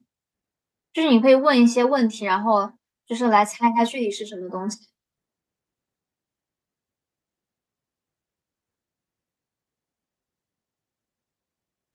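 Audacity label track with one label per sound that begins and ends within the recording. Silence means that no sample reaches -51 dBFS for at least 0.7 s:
0.950000	4.850000	sound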